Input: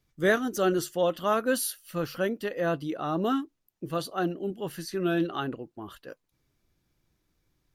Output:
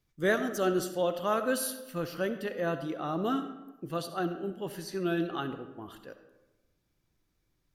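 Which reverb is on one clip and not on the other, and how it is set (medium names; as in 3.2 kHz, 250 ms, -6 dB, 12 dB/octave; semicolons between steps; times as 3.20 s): algorithmic reverb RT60 1.1 s, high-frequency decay 0.55×, pre-delay 25 ms, DRR 9.5 dB; trim -3.5 dB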